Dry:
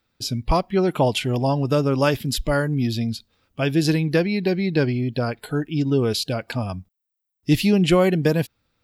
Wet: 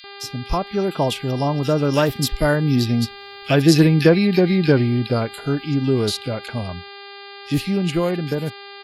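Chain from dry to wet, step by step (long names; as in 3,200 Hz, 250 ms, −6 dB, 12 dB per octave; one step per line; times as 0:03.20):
source passing by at 0:03.75, 16 m/s, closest 21 metres
hum with harmonics 400 Hz, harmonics 12, −45 dBFS −2 dB per octave
multiband delay without the direct sound highs, lows 40 ms, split 2,100 Hz
level +6.5 dB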